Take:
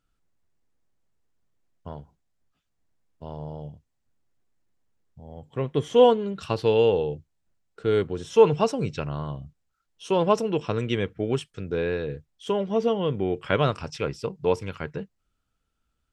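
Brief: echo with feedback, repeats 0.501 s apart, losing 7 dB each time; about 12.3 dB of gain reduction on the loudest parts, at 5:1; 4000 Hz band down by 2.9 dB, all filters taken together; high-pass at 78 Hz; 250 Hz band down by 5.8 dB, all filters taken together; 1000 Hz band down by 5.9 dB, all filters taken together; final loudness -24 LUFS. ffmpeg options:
-af "highpass=78,equalizer=f=250:t=o:g=-8,equalizer=f=1k:t=o:g=-7,equalizer=f=4k:t=o:g=-3.5,acompressor=threshold=-28dB:ratio=5,aecho=1:1:501|1002|1503|2004|2505:0.447|0.201|0.0905|0.0407|0.0183,volume=10.5dB"

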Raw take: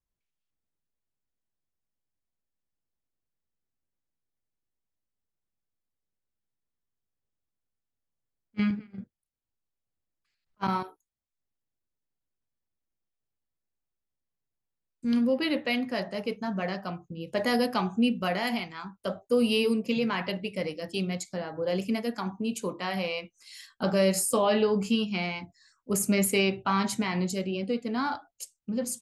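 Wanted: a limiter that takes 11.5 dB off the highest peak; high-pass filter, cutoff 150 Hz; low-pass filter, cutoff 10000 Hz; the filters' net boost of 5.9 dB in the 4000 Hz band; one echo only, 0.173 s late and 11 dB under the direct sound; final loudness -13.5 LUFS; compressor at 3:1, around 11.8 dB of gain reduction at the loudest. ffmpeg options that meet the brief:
-af "highpass=150,lowpass=10k,equalizer=f=4k:t=o:g=8.5,acompressor=threshold=-36dB:ratio=3,alimiter=level_in=7.5dB:limit=-24dB:level=0:latency=1,volume=-7.5dB,aecho=1:1:173:0.282,volume=27.5dB"

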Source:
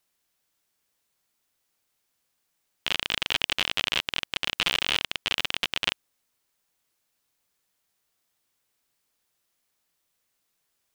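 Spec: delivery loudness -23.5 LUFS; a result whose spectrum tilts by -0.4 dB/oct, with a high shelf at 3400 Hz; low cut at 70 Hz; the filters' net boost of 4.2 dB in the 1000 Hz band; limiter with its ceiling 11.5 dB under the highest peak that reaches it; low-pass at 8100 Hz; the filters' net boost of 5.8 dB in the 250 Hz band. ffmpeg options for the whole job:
-af "highpass=70,lowpass=8.1k,equalizer=f=250:t=o:g=7.5,equalizer=f=1k:t=o:g=4,highshelf=f=3.4k:g=8.5,volume=6dB,alimiter=limit=-4dB:level=0:latency=1"

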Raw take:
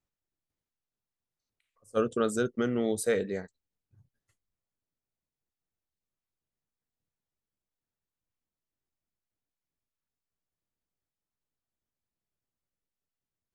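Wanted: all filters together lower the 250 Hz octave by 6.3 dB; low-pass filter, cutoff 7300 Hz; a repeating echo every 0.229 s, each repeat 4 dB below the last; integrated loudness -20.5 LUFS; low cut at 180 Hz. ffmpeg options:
-af "highpass=180,lowpass=7.3k,equalizer=f=250:t=o:g=-6.5,aecho=1:1:229|458|687|916|1145|1374|1603|1832|2061:0.631|0.398|0.25|0.158|0.0994|0.0626|0.0394|0.0249|0.0157,volume=11dB"

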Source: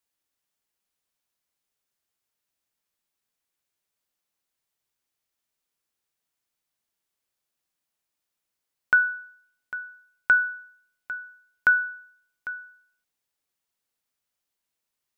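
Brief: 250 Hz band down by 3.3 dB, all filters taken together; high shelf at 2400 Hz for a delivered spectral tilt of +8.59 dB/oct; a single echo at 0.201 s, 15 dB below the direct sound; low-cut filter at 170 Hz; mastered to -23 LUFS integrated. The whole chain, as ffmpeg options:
-af "highpass=170,equalizer=f=250:t=o:g=-3,highshelf=f=2.4k:g=-8,aecho=1:1:201:0.178,volume=4dB"

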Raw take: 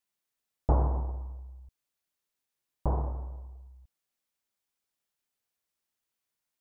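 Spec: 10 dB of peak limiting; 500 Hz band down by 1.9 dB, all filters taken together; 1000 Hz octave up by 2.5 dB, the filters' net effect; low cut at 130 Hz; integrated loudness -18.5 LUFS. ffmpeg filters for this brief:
-af "highpass=130,equalizer=f=500:t=o:g=-4,equalizer=f=1k:t=o:g=4.5,volume=23dB,alimiter=limit=-3.5dB:level=0:latency=1"

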